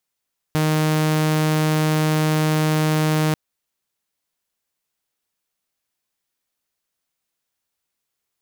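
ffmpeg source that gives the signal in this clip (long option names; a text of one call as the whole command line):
ffmpeg -f lavfi -i "aevalsrc='0.2*(2*mod(155*t,1)-1)':duration=2.79:sample_rate=44100" out.wav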